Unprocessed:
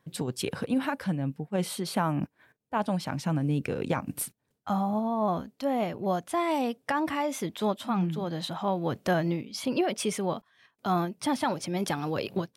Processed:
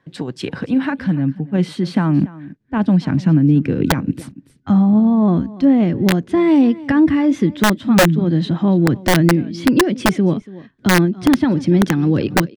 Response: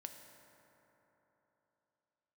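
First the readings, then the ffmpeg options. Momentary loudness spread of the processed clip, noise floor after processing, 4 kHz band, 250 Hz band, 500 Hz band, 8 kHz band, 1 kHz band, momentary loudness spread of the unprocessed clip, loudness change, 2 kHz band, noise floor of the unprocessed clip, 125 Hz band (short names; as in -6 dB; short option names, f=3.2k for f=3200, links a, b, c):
7 LU, -52 dBFS, +10.5 dB, +16.5 dB, +9.5 dB, +8.5 dB, +5.5 dB, 5 LU, +14.0 dB, +14.0 dB, -75 dBFS, +15.5 dB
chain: -filter_complex "[0:a]acrossover=split=160[a][b];[a]acompressor=threshold=-47dB:ratio=8[c];[b]aecho=1:1:285:0.112[d];[c][d]amix=inputs=2:normalize=0,asubboost=boost=10:cutoff=240,lowpass=4.5k,aeval=exprs='(mod(3.35*val(0)+1,2)-1)/3.35':c=same,superequalizer=6b=1.58:11b=1.58,alimiter=limit=-11.5dB:level=0:latency=1:release=409,volume=6dB"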